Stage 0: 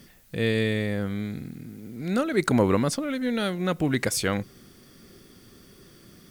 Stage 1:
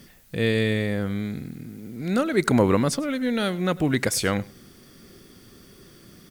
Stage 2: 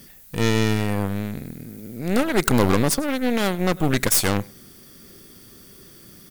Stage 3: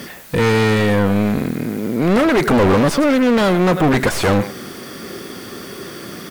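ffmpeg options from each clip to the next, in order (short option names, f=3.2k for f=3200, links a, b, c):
-af "aecho=1:1:101:0.0841,volume=2dB"
-af "aeval=exprs='0.501*(cos(1*acos(clip(val(0)/0.501,-1,1)))-cos(1*PI/2))+0.0794*(cos(8*acos(clip(val(0)/0.501,-1,1)))-cos(8*PI/2))':c=same,highshelf=f=7.8k:g=11.5"
-filter_complex "[0:a]asplit=2[a][b];[b]highpass=f=720:p=1,volume=36dB,asoftclip=type=tanh:threshold=-1.5dB[c];[a][c]amix=inputs=2:normalize=0,lowpass=f=1.1k:p=1,volume=-6dB,volume=-2.5dB"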